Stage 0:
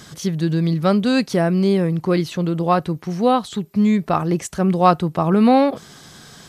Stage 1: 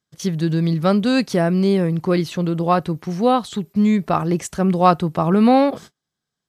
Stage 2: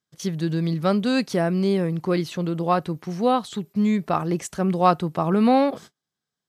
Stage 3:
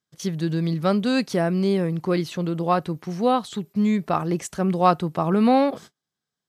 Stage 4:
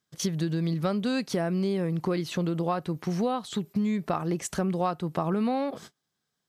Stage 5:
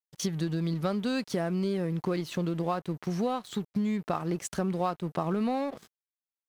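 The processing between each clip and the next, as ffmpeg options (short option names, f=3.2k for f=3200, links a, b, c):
-af "agate=range=-40dB:threshold=-35dB:ratio=16:detection=peak"
-af "lowshelf=f=73:g=-10,volume=-3.5dB"
-af anull
-af "acompressor=threshold=-29dB:ratio=6,volume=4dB"
-af "aeval=exprs='sgn(val(0))*max(abs(val(0))-0.00447,0)':c=same,volume=-1.5dB"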